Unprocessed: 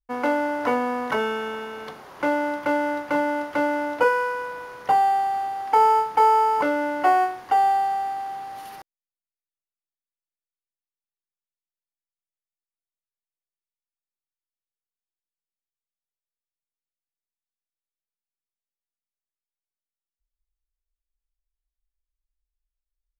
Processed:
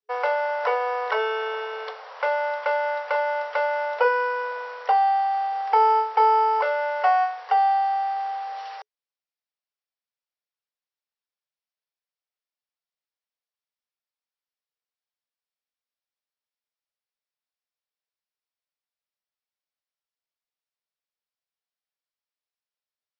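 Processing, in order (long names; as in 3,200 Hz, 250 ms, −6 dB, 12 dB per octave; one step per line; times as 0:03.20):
brick-wall band-pass 420–5,800 Hz
in parallel at +0.5 dB: downward compressor, threshold −28 dBFS, peak gain reduction 13.5 dB
on the sum: level −3 dB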